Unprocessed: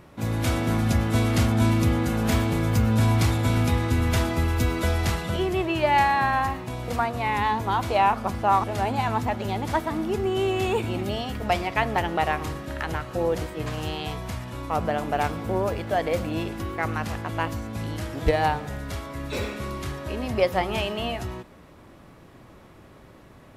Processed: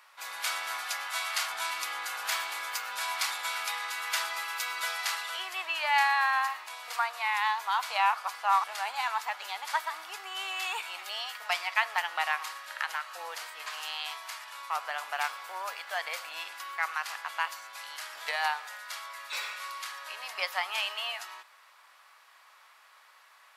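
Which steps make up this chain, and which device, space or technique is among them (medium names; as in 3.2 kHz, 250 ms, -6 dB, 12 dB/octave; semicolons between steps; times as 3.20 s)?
1.08–1.50 s: steep high-pass 530 Hz 48 dB/octave; headphones lying on a table (high-pass 1 kHz 24 dB/octave; peaking EQ 4.6 kHz +4 dB 0.24 oct)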